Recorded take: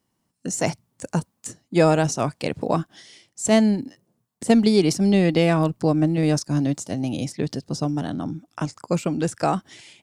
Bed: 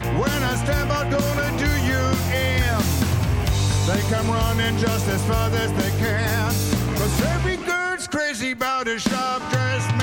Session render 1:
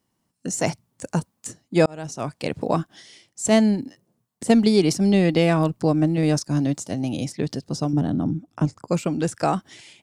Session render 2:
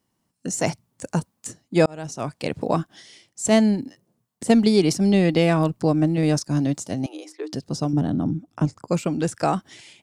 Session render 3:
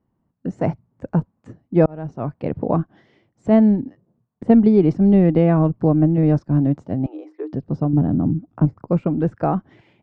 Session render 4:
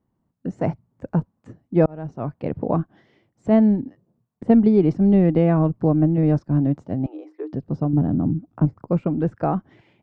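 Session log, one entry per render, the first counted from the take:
1.86–2.53 s: fade in; 7.93–8.88 s: tilt shelf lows +7 dB, about 690 Hz
7.06–7.53 s: rippled Chebyshev high-pass 300 Hz, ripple 9 dB
low-pass 1.5 kHz 12 dB/octave; tilt EQ -2 dB/octave
trim -2 dB

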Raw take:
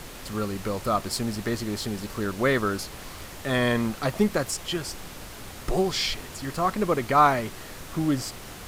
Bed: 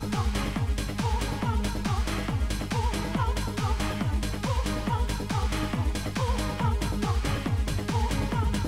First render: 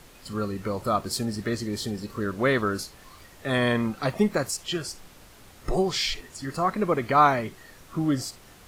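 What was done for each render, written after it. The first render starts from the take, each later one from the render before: noise print and reduce 10 dB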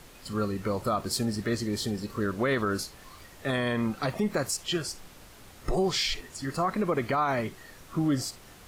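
peak limiter -18 dBFS, peak gain reduction 11 dB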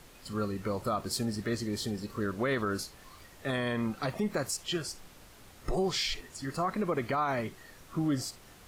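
trim -3.5 dB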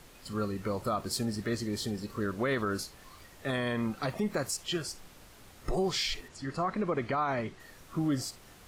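6.28–7.60 s: distance through air 65 m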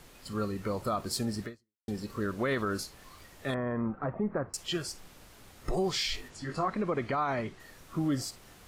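1.45–1.88 s: fade out exponential; 3.54–4.54 s: low-pass 1.5 kHz 24 dB/octave; 6.12–6.68 s: doubling 20 ms -5 dB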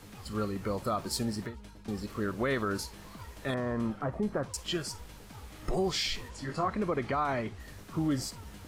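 add bed -21 dB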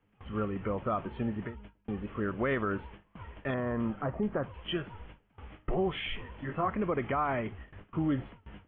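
steep low-pass 3.2 kHz 96 dB/octave; gate with hold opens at -37 dBFS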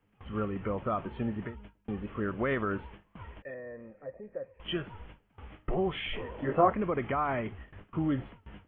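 3.42–4.60 s: cascade formant filter e; 6.13–6.73 s: peaking EQ 510 Hz +12.5 dB 1.6 oct

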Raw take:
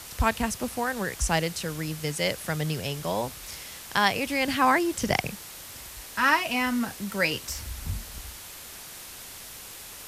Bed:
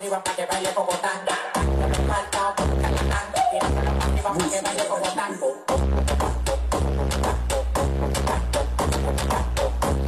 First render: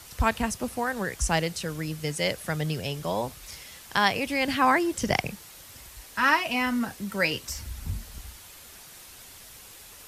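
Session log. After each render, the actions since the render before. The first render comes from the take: noise reduction 6 dB, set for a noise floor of -43 dBFS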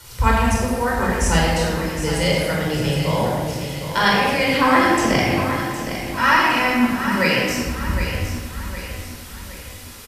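on a send: feedback delay 763 ms, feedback 44%, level -9.5 dB; on the sum: simulated room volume 1700 m³, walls mixed, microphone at 4.7 m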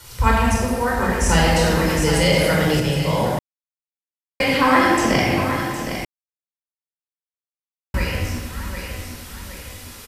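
1.29–2.80 s: level flattener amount 50%; 3.39–4.40 s: mute; 6.05–7.94 s: mute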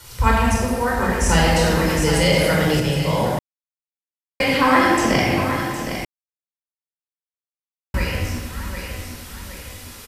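no audible change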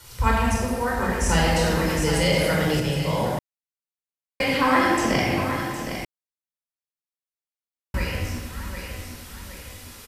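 trim -4 dB

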